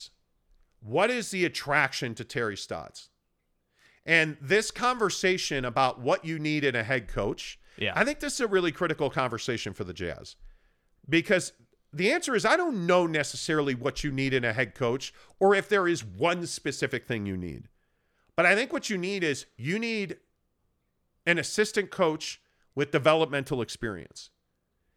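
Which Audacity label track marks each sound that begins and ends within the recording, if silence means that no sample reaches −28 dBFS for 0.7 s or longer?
0.930000	2.800000	sound
4.080000	10.120000	sound
11.130000	17.510000	sound
18.380000	20.120000	sound
21.270000	23.940000	sound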